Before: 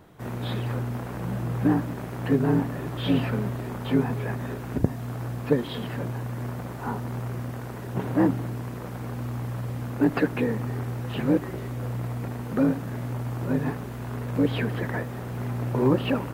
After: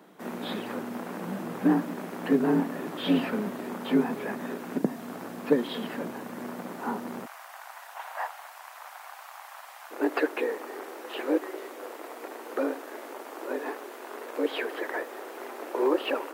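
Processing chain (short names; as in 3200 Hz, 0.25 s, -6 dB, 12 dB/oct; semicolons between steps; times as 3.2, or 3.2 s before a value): steep high-pass 180 Hz 48 dB/oct, from 7.25 s 700 Hz, from 9.9 s 320 Hz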